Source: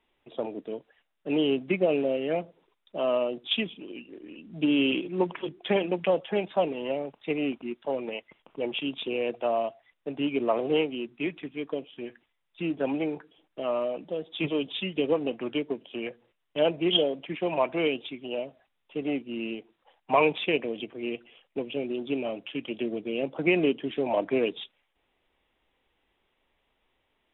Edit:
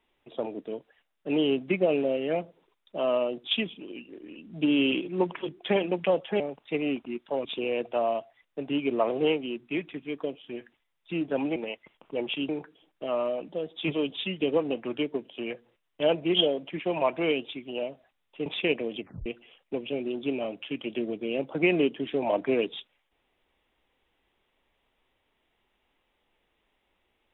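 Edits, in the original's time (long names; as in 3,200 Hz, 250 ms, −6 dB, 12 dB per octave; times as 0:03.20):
0:06.40–0:06.96: remove
0:08.01–0:08.94: move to 0:13.05
0:19.02–0:20.30: remove
0:20.85: tape stop 0.25 s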